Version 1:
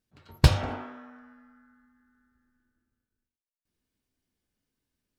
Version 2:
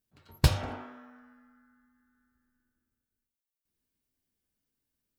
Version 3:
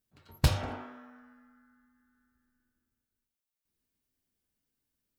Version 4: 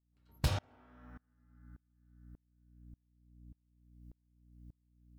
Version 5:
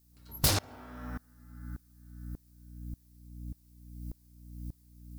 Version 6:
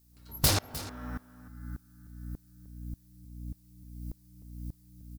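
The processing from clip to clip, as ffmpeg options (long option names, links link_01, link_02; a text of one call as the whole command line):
ffmpeg -i in.wav -af "highshelf=frequency=9800:gain=11.5,volume=-4.5dB" out.wav
ffmpeg -i in.wav -af "asoftclip=type=tanh:threshold=-12.5dB" out.wav
ffmpeg -i in.wav -af "aeval=exprs='val(0)+0.00355*(sin(2*PI*60*n/s)+sin(2*PI*2*60*n/s)/2+sin(2*PI*3*60*n/s)/3+sin(2*PI*4*60*n/s)/4+sin(2*PI*5*60*n/s)/5)':channel_layout=same,aeval=exprs='val(0)*pow(10,-32*if(lt(mod(-1.7*n/s,1),2*abs(-1.7)/1000),1-mod(-1.7*n/s,1)/(2*abs(-1.7)/1000),(mod(-1.7*n/s,1)-2*abs(-1.7)/1000)/(1-2*abs(-1.7)/1000))/20)':channel_layout=same" out.wav
ffmpeg -i in.wav -filter_complex "[0:a]asplit=2[link_01][link_02];[link_02]aeval=exprs='0.106*sin(PI/2*7.08*val(0)/0.106)':channel_layout=same,volume=-9dB[link_03];[link_01][link_03]amix=inputs=2:normalize=0,aexciter=amount=1.4:drive=9.5:freq=4200" out.wav
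ffmpeg -i in.wav -af "aecho=1:1:306:0.178,volume=1.5dB" out.wav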